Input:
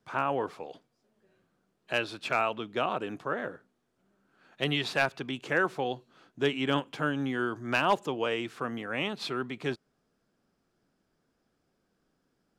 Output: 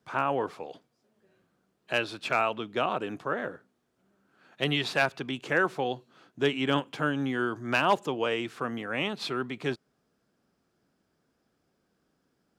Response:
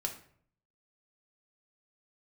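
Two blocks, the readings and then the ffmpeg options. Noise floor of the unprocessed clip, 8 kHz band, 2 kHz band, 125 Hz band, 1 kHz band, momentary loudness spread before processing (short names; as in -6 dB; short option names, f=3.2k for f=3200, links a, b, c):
-77 dBFS, +1.5 dB, +1.5 dB, +1.5 dB, +1.5 dB, 8 LU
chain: -af "highpass=48,volume=1.5dB"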